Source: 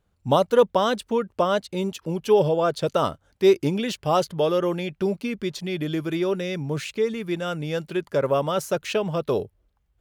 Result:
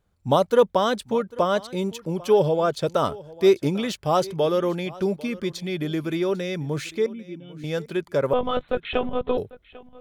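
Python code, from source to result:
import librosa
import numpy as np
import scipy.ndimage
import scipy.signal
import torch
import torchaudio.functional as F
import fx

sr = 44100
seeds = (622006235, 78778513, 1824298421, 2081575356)

y = fx.formant_cascade(x, sr, vowel='i', at=(7.06, 7.64))
y = fx.notch(y, sr, hz=2800.0, q=15.0)
y = fx.lpc_monotone(y, sr, seeds[0], pitch_hz=250.0, order=16, at=(8.33, 9.38))
y = y + 10.0 ** (-20.5 / 20.0) * np.pad(y, (int(796 * sr / 1000.0), 0))[:len(y)]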